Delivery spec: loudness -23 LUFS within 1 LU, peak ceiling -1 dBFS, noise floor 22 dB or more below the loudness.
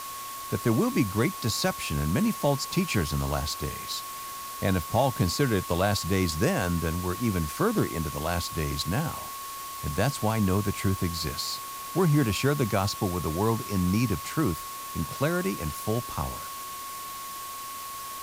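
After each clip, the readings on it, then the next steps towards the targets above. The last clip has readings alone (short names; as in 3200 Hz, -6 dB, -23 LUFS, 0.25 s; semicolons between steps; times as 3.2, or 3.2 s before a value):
steady tone 1100 Hz; tone level -37 dBFS; noise floor -38 dBFS; noise floor target -50 dBFS; loudness -28.0 LUFS; peak -12.0 dBFS; loudness target -23.0 LUFS
-> notch 1100 Hz, Q 30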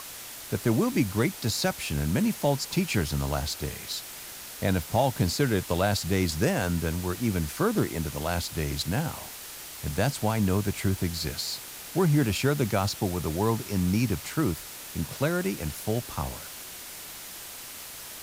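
steady tone none; noise floor -42 dBFS; noise floor target -50 dBFS
-> noise print and reduce 8 dB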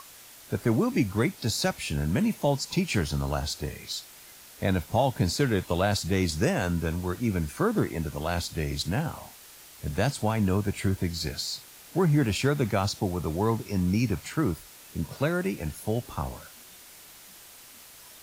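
noise floor -50 dBFS; loudness -28.0 LUFS; peak -12.5 dBFS; loudness target -23.0 LUFS
-> gain +5 dB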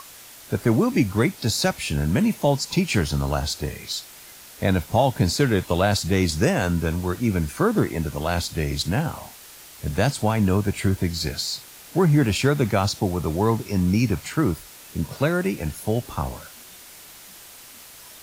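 loudness -23.0 LUFS; peak -7.5 dBFS; noise floor -45 dBFS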